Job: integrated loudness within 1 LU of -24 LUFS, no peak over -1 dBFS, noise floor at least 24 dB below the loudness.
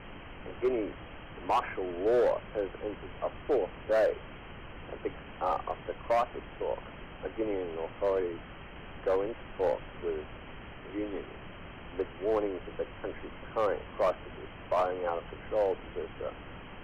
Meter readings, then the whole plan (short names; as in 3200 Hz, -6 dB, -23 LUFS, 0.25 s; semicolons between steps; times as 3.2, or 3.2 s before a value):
clipped 1.0%; flat tops at -21.5 dBFS; noise floor -47 dBFS; noise floor target -57 dBFS; loudness -33.0 LUFS; peak -21.5 dBFS; loudness target -24.0 LUFS
-> clip repair -21.5 dBFS; noise print and reduce 10 dB; gain +9 dB